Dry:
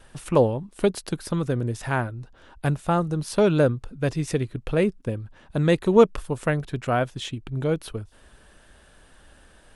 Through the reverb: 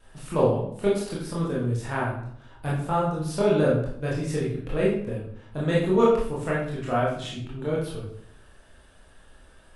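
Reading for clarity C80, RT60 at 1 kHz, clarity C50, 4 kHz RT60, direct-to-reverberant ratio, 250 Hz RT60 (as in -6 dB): 6.0 dB, 0.60 s, 2.5 dB, 0.45 s, -6.5 dB, 0.80 s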